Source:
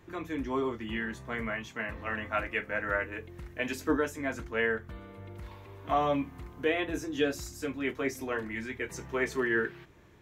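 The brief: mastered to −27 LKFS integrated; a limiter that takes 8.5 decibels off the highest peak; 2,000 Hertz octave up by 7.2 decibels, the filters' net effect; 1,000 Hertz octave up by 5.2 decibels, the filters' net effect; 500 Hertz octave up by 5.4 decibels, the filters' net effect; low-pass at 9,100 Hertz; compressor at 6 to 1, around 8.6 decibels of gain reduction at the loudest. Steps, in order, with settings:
low-pass filter 9,100 Hz
parametric band 500 Hz +5.5 dB
parametric band 1,000 Hz +3 dB
parametric band 2,000 Hz +7.5 dB
downward compressor 6 to 1, threshold −27 dBFS
level +8 dB
brickwall limiter −15.5 dBFS

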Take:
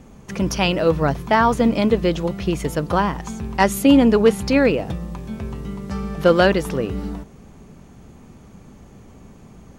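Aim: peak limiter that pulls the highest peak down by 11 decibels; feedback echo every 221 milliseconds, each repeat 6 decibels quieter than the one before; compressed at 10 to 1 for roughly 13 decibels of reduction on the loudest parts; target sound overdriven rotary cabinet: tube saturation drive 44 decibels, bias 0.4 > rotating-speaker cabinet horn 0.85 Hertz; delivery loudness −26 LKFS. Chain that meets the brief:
downward compressor 10 to 1, threshold −22 dBFS
brickwall limiter −18.5 dBFS
repeating echo 221 ms, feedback 50%, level −6 dB
tube saturation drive 44 dB, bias 0.4
rotating-speaker cabinet horn 0.85 Hz
level +21.5 dB

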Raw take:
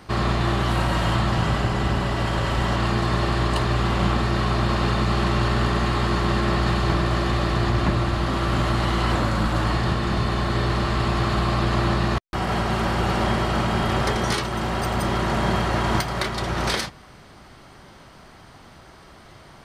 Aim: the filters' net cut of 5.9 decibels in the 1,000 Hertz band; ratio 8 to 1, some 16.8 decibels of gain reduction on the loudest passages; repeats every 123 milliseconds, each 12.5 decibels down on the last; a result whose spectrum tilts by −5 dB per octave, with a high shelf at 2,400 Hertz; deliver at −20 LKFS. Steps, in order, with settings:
parametric band 1,000 Hz −8.5 dB
high-shelf EQ 2,400 Hz +4 dB
downward compressor 8 to 1, threshold −36 dBFS
repeating echo 123 ms, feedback 24%, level −12.5 dB
level +19.5 dB

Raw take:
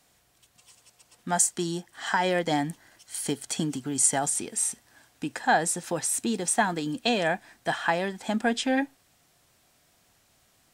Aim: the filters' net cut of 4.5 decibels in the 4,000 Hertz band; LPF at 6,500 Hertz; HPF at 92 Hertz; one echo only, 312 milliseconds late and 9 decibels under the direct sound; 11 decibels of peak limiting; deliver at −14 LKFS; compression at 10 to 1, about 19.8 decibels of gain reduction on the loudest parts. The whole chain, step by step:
high-pass filter 92 Hz
low-pass filter 6,500 Hz
parametric band 4,000 Hz −5.5 dB
downward compressor 10 to 1, threshold −38 dBFS
brickwall limiter −33.5 dBFS
single-tap delay 312 ms −9 dB
level +30 dB

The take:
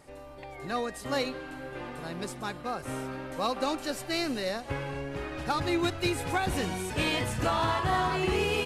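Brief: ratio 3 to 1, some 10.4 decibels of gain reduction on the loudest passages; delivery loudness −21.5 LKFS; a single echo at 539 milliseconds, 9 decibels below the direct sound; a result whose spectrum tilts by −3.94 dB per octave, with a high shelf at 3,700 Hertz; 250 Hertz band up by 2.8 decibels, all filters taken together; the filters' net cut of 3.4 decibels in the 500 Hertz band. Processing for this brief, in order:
parametric band 250 Hz +7 dB
parametric band 500 Hz −8 dB
high-shelf EQ 3,700 Hz +6.5 dB
downward compressor 3 to 1, threshold −38 dBFS
single-tap delay 539 ms −9 dB
level +17 dB

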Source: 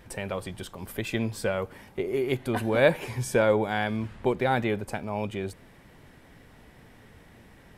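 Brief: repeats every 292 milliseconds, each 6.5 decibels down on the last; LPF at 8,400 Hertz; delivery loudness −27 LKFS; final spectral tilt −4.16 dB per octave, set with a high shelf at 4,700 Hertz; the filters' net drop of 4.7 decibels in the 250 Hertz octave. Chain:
low-pass filter 8,400 Hz
parametric band 250 Hz −6.5 dB
high-shelf EQ 4,700 Hz +3 dB
repeating echo 292 ms, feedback 47%, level −6.5 dB
level +1.5 dB

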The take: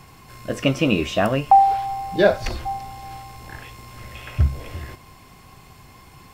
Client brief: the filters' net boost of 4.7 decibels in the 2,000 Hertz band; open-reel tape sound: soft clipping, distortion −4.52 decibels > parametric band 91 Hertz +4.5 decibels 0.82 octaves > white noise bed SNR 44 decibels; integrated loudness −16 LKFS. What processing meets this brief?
parametric band 2,000 Hz +6.5 dB
soft clipping −21 dBFS
parametric band 91 Hz +4.5 dB 0.82 octaves
white noise bed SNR 44 dB
level +12 dB

